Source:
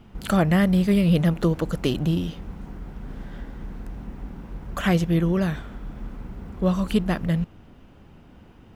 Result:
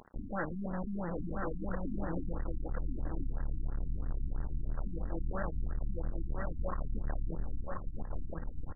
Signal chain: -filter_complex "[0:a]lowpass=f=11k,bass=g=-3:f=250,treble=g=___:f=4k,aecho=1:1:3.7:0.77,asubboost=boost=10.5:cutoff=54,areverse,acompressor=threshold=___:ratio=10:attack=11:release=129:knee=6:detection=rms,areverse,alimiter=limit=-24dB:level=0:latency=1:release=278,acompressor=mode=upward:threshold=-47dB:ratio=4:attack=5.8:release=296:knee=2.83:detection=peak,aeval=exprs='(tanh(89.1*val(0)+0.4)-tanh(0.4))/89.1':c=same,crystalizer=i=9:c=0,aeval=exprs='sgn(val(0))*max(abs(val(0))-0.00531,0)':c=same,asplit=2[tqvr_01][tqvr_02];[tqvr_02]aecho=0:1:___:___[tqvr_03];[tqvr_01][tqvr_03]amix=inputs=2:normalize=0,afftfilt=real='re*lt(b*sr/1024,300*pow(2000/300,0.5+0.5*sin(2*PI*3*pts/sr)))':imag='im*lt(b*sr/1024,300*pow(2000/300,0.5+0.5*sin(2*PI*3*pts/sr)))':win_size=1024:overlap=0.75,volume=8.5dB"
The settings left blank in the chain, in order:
-9, -26dB, 1033, 0.668